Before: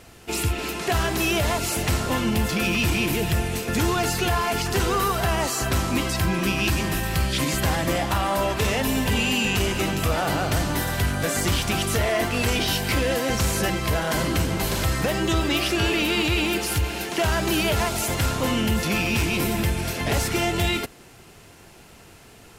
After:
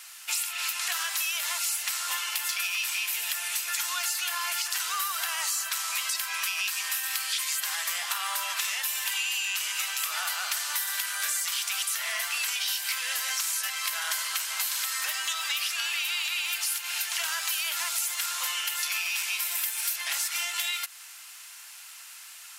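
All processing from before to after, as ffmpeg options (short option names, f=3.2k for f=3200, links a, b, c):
-filter_complex "[0:a]asettb=1/sr,asplit=3[a][b][c];[a]atrim=end=19.554[d];[b]atrim=start=19.55:end=19.96,asetpts=PTS-STARTPTS,afade=t=in:d=0.004:c=qsin,afade=t=out:st=0.406:d=0.004:c=qsin,highshelf=f=9.9k:g=11.5,acrusher=bits=6:mode=log:mix=0:aa=0.000001[e];[c]atrim=start=19.956[f];[d][e]acrossfade=d=0.004:c1=hsin:c2=qsin[g];[g][f]acrossfade=d=0.004:c1=qsin:c2=hsin,highpass=f=1.1k:w=0.5412,highpass=f=1.1k:w=1.3066,highshelf=f=3.6k:g=11,acompressor=threshold=-27dB:ratio=6"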